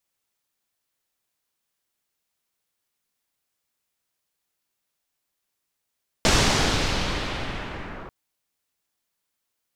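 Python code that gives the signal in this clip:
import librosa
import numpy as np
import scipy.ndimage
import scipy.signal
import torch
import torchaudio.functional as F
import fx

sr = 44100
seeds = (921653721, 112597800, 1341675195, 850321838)

y = fx.riser_noise(sr, seeds[0], length_s=1.84, colour='pink', kind='lowpass', start_hz=6500.0, end_hz=1300.0, q=1.2, swell_db=-20, law='linear')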